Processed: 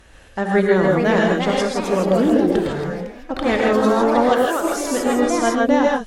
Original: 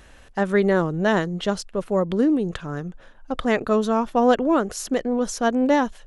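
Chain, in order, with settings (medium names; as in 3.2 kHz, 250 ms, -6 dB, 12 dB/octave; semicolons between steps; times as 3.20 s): 4.29–4.72 s: Bessel high-pass 660 Hz, order 2; ever faster or slower copies 514 ms, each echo +3 st, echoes 3, each echo -6 dB; gated-style reverb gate 180 ms rising, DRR -1 dB; Chebyshev shaper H 2 -19 dB, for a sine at -3 dBFS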